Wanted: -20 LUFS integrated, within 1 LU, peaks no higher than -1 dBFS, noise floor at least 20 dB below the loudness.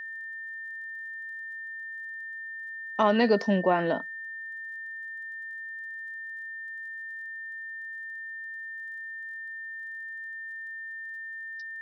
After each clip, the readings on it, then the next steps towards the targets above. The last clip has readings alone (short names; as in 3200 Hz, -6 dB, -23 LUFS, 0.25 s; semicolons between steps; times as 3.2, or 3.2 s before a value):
ticks 31/s; steady tone 1800 Hz; tone level -36 dBFS; loudness -32.5 LUFS; peak -11.0 dBFS; loudness target -20.0 LUFS
-> de-click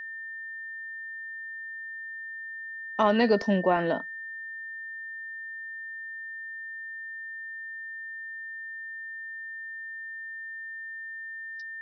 ticks 0/s; steady tone 1800 Hz; tone level -36 dBFS
-> notch 1800 Hz, Q 30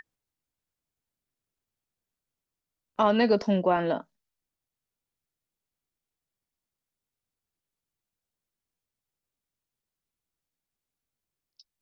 steady tone none; loudness -25.0 LUFS; peak -11.5 dBFS; loudness target -20.0 LUFS
-> gain +5 dB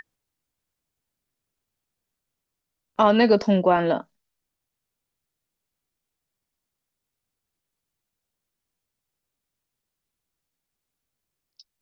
loudness -20.0 LUFS; peak -6.5 dBFS; noise floor -84 dBFS